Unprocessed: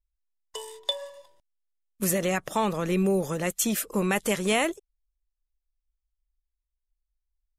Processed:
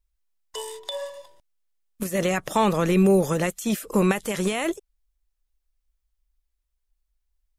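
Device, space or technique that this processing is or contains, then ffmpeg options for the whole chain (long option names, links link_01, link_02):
de-esser from a sidechain: -filter_complex "[0:a]asplit=2[link_01][link_02];[link_02]highpass=4100,apad=whole_len=334405[link_03];[link_01][link_03]sidechaincompress=threshold=-39dB:ratio=8:attack=2.1:release=43,volume=6.5dB"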